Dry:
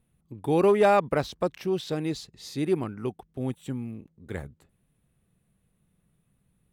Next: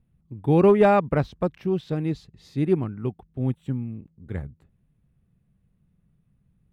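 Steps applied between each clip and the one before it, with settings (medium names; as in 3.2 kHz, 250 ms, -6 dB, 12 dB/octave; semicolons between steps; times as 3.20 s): tone controls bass +10 dB, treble -11 dB; upward expansion 1.5:1, over -28 dBFS; trim +2.5 dB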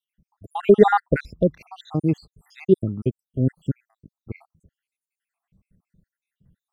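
random holes in the spectrogram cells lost 76%; trim +6 dB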